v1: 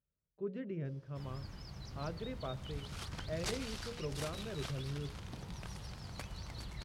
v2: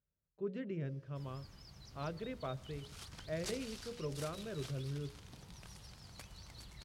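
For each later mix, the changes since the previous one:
background −9.0 dB
master: add high-shelf EQ 3,400 Hz +8.5 dB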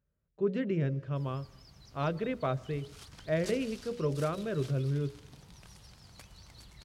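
speech +10.0 dB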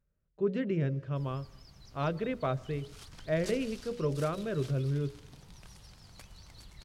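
master: remove high-pass filter 44 Hz

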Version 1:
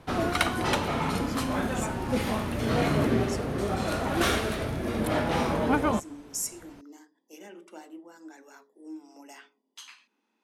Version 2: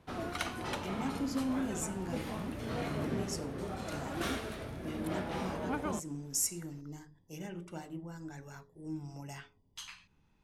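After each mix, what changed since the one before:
speech: remove Butterworth high-pass 220 Hz 72 dB per octave
background −11.5 dB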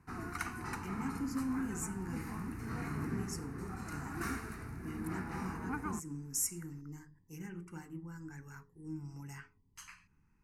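speech: add phaser with its sweep stopped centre 1,500 Hz, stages 4
background: add phaser with its sweep stopped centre 1,400 Hz, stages 4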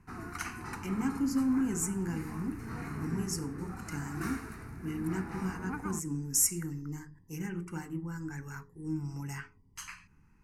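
speech +8.0 dB

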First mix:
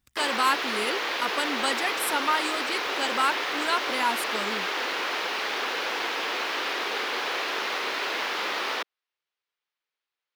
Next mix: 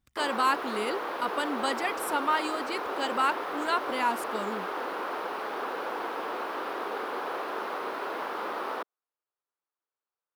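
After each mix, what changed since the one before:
background: add flat-topped bell 3,600 Hz −11.5 dB 2.3 octaves
master: add high-shelf EQ 2,600 Hz −7.5 dB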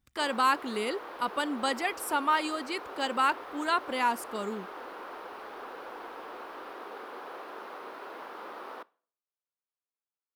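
background −10.0 dB
reverb: on, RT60 0.50 s

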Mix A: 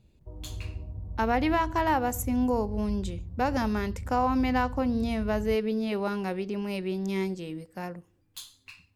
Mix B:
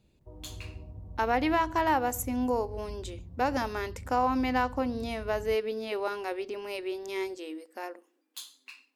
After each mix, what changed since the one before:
speech: add linear-phase brick-wall high-pass 230 Hz
master: add low-shelf EQ 150 Hz −8 dB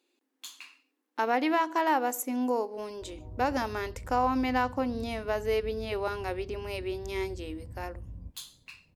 background: entry +2.75 s

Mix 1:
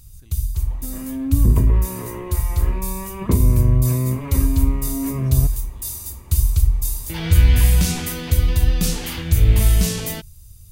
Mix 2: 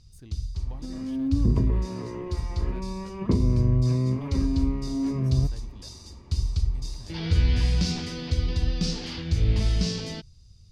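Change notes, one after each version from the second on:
first sound: add transistor ladder low-pass 5,500 Hz, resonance 60%
second sound −9.0 dB
master: add parametric band 250 Hz +7 dB 2.7 octaves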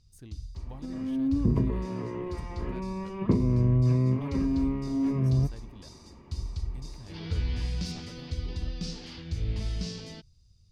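first sound −8.5 dB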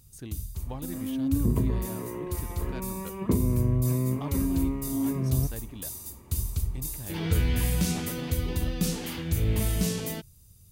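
speech +9.0 dB
first sound: remove transistor ladder low-pass 5,500 Hz, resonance 60%
master: add low-shelf EQ 81 Hz −11 dB

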